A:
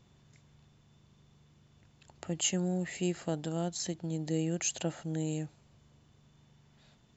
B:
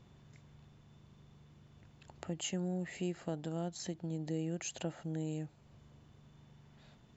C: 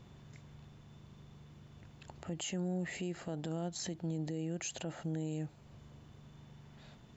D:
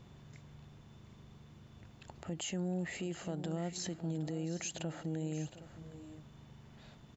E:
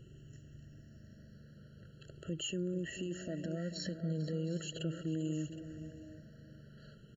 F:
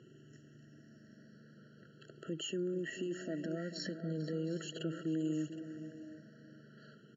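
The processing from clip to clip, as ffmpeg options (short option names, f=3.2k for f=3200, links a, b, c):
-af "highshelf=f=3.7k:g=-8.5,acompressor=threshold=-51dB:ratio=1.5,volume=3dB"
-af "alimiter=level_in=10.5dB:limit=-24dB:level=0:latency=1:release=43,volume=-10.5dB,volume=4.5dB"
-af "aecho=1:1:712|767:0.168|0.168"
-filter_complex "[0:a]afftfilt=real='re*pow(10,8/40*sin(2*PI*(0.67*log(max(b,1)*sr/1024/100)/log(2)-(-0.4)*(pts-256)/sr)))':imag='im*pow(10,8/40*sin(2*PI*(0.67*log(max(b,1)*sr/1024/100)/log(2)-(-0.4)*(pts-256)/sr)))':win_size=1024:overlap=0.75,asplit=2[a][b];[b]adelay=443.1,volume=-11dB,highshelf=f=4k:g=-9.97[c];[a][c]amix=inputs=2:normalize=0,afftfilt=real='re*eq(mod(floor(b*sr/1024/660),2),0)':imag='im*eq(mod(floor(b*sr/1024/660),2),0)':win_size=1024:overlap=0.75"
-af "highpass=f=170:w=0.5412,highpass=f=170:w=1.3066,equalizer=f=180:t=q:w=4:g=-6,equalizer=f=560:t=q:w=4:g=-7,equalizer=f=1.1k:t=q:w=4:g=4,equalizer=f=2.7k:t=q:w=4:g=-6,equalizer=f=3.9k:t=q:w=4:g=-7,lowpass=f=6k:w=0.5412,lowpass=f=6k:w=1.3066,volume=3.5dB"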